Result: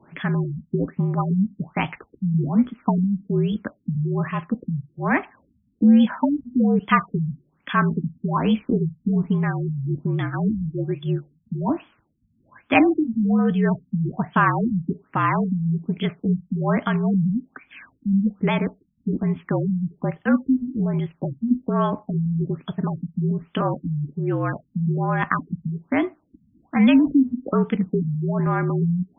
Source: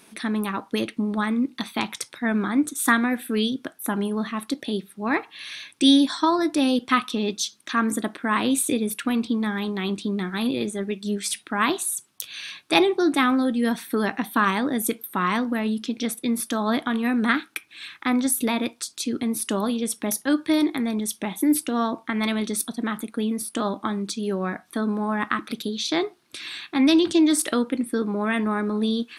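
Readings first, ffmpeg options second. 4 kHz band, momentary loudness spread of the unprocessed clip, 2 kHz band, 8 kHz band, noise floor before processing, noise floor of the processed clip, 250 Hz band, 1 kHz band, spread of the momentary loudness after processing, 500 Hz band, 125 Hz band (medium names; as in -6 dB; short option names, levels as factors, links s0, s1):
-12.0 dB, 9 LU, -1.5 dB, under -40 dB, -57 dBFS, -66 dBFS, +1.5 dB, +0.5 dB, 8 LU, -0.5 dB, +14.5 dB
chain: -af "afreqshift=-52,afftfilt=real='re*lt(b*sr/1024,230*pow(3500/230,0.5+0.5*sin(2*PI*1.2*pts/sr)))':imag='im*lt(b*sr/1024,230*pow(3500/230,0.5+0.5*sin(2*PI*1.2*pts/sr)))':win_size=1024:overlap=0.75,volume=1.41"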